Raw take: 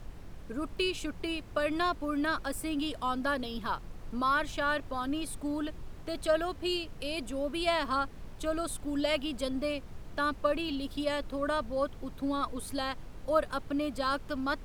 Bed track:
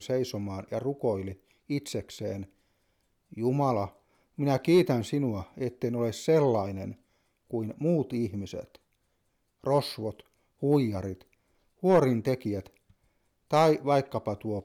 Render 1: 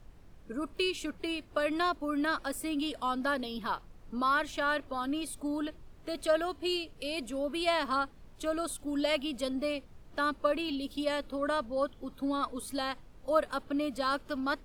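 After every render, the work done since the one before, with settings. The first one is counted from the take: noise print and reduce 9 dB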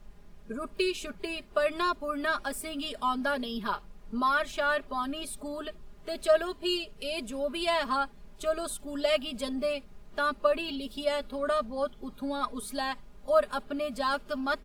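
comb 4.9 ms, depth 77%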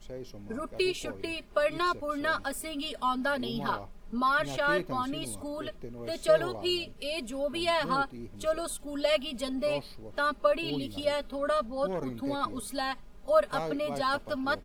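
add bed track -13 dB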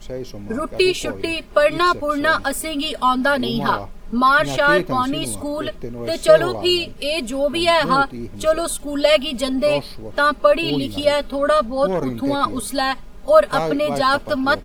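gain +12 dB; limiter -1 dBFS, peak gain reduction 1.5 dB

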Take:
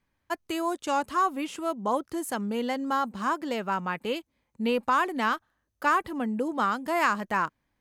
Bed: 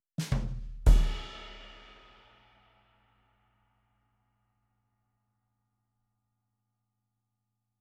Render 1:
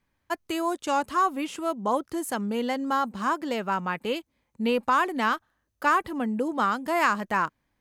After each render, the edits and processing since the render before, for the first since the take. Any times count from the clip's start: gain +1.5 dB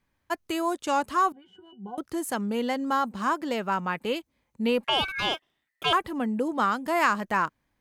1.32–1.98 octave resonator F#, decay 0.13 s; 4.84–5.93 ring modulator 1900 Hz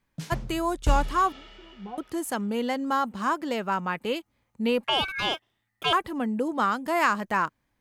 add bed -2.5 dB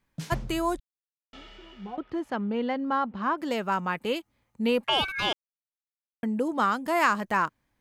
0.8–1.33 mute; 1.96–3.38 air absorption 260 m; 5.33–6.23 mute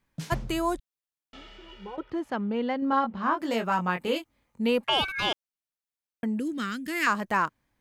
1.68–2.1 comb 2.1 ms, depth 77%; 2.8–4.62 doubler 22 ms -5 dB; 6.39–7.07 EQ curve 310 Hz 0 dB, 870 Hz -26 dB, 1700 Hz +1 dB

